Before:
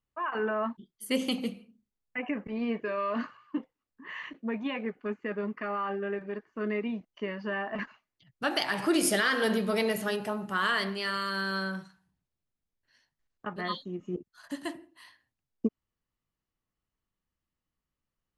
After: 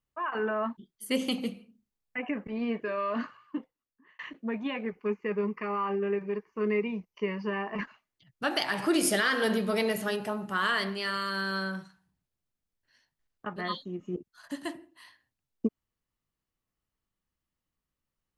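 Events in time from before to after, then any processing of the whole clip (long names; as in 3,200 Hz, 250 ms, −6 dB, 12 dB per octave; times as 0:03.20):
0:03.41–0:04.19: fade out
0:04.91–0:07.81: EQ curve with evenly spaced ripples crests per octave 0.81, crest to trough 10 dB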